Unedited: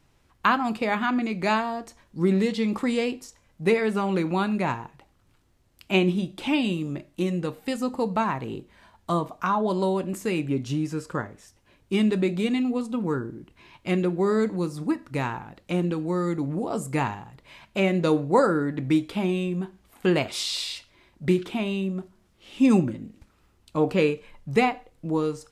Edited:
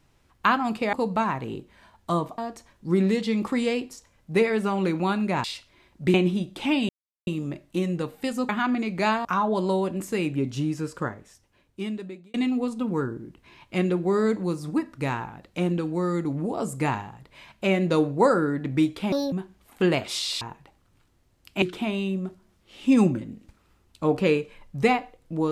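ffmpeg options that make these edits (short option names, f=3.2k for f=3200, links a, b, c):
-filter_complex "[0:a]asplit=13[a][b][c][d][e][f][g][h][i][j][k][l][m];[a]atrim=end=0.932[n];[b]atrim=start=7.928:end=9.382[o];[c]atrim=start=1.688:end=4.752[p];[d]atrim=start=20.648:end=21.352[q];[e]atrim=start=5.958:end=6.71,asetpts=PTS-STARTPTS,afade=t=out:st=0.748:d=0.004:c=hsin,apad=pad_dur=0.38[r];[f]atrim=start=6.71:end=7.932,asetpts=PTS-STARTPTS,afade=t=in:d=0.004:c=hsin[s];[g]atrim=start=0.928:end=1.692[t];[h]atrim=start=9.378:end=12.47,asetpts=PTS-STARTPTS,afade=t=out:st=1.772:d=1.32[u];[i]atrim=start=12.47:end=19.254,asetpts=PTS-STARTPTS,afade=t=in:d=0.004:c=hsin[v];[j]atrim=start=19.25:end=19.56,asetpts=PTS-STARTPTS,asetrate=67914,aresample=44100,atrim=end_sample=8877,asetpts=PTS-STARTPTS[w];[k]atrim=start=19.556:end=20.652[x];[l]atrim=start=4.748:end=5.962[y];[m]atrim=start=21.348[z];[n][o]acrossfade=d=0.004:c1=hsin:c2=hsin[aa];[aa][p]acrossfade=d=0.004:c1=hsin:c2=hsin[ab];[ab][q]acrossfade=d=0.004:c1=hsin:c2=hsin[ac];[r][s]concat=n=2:v=0:a=1[ad];[ac][ad]acrossfade=d=0.004:c1=hsin:c2=hsin[ae];[ae][t]acrossfade=d=0.004:c1=hsin:c2=hsin[af];[u][v]concat=n=2:v=0:a=1[ag];[af][ag]acrossfade=d=0.004:c1=hsin:c2=hsin[ah];[ah][w]acrossfade=d=0.004:c1=hsin:c2=hsin[ai];[ai][x]acrossfade=d=0.004:c1=hsin:c2=hsin[aj];[aj][y]acrossfade=d=0.004:c1=hsin:c2=hsin[ak];[ak][z]acrossfade=d=0.004:c1=hsin:c2=hsin"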